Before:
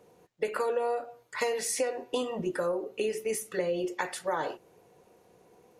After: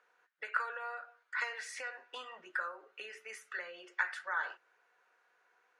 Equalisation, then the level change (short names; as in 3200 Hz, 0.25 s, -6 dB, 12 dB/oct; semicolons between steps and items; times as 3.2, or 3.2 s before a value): band-pass 1500 Hz, Q 4.7; air absorption 56 m; tilt +4 dB/oct; +5.0 dB